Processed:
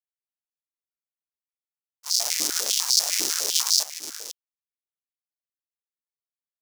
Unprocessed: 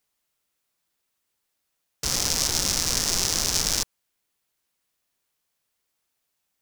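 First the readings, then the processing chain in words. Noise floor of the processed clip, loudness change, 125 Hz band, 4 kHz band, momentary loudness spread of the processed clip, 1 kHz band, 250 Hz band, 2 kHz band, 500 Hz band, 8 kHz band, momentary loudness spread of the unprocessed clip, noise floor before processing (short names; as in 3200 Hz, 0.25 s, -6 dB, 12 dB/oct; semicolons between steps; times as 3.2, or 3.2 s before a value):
under -85 dBFS, +1.5 dB, under -25 dB, +2.0 dB, 16 LU, -3.5 dB, -8.0 dB, -2.5 dB, -4.0 dB, +0.5 dB, 5 LU, -78 dBFS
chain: in parallel at -9 dB: bit-crush 4-bit; on the sum: high shelf 7900 Hz +10.5 dB; expander -12 dBFS; on a send: echo 0.477 s -11 dB; on the sum: crackling interface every 0.11 s, samples 512, repeat, from 0.33; stepped high-pass 10 Hz 310–4600 Hz; gain -3.5 dB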